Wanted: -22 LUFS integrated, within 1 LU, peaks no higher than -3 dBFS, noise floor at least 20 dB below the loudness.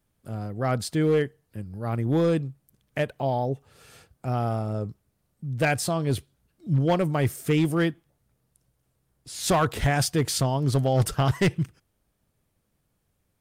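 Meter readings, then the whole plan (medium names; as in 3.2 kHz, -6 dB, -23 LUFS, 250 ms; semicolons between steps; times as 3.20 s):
clipped samples 1.0%; clipping level -16.0 dBFS; loudness -25.5 LUFS; peak level -16.0 dBFS; loudness target -22.0 LUFS
-> clip repair -16 dBFS; trim +3.5 dB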